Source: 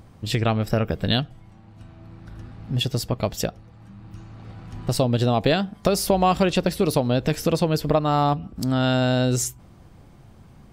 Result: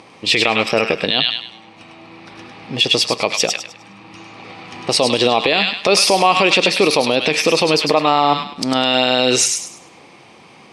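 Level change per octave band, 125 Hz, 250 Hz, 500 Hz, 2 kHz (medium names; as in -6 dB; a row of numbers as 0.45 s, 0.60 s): -8.0 dB, +1.5 dB, +6.5 dB, +14.0 dB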